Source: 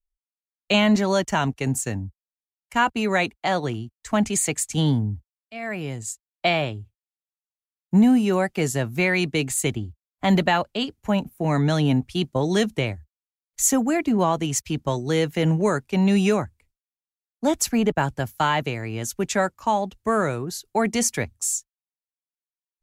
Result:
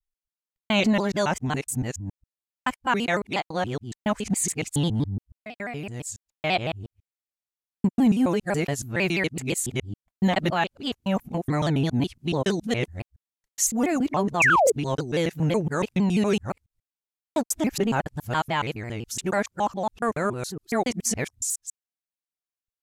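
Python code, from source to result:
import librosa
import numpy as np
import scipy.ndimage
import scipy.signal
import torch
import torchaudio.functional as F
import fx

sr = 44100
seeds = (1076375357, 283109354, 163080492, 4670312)

y = fx.local_reverse(x, sr, ms=140.0)
y = fx.spec_paint(y, sr, seeds[0], shape='fall', start_s=14.4, length_s=0.32, low_hz=380.0, high_hz=2800.0, level_db=-15.0)
y = fx.vibrato_shape(y, sr, shape='saw_down', rate_hz=6.0, depth_cents=160.0)
y = y * librosa.db_to_amplitude(-3.0)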